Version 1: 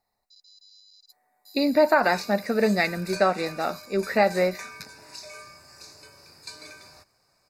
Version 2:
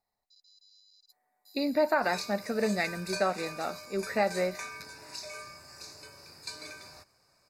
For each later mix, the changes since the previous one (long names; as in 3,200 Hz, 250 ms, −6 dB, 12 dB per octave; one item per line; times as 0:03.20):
speech −7.0 dB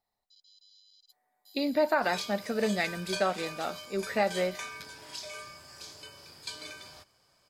master: remove Butterworth band-reject 3,200 Hz, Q 3